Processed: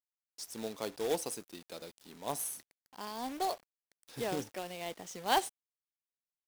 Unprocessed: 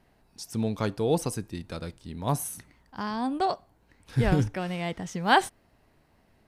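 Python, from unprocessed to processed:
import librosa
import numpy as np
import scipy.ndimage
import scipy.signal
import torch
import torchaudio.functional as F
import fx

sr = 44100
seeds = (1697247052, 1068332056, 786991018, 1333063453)

y = scipy.signal.sosfilt(scipy.signal.butter(2, 450.0, 'highpass', fs=sr, output='sos'), x)
y = fx.peak_eq(y, sr, hz=1500.0, db=-10.5, octaves=1.5)
y = fx.quant_companded(y, sr, bits=4)
y = y * librosa.db_to_amplitude(-3.0)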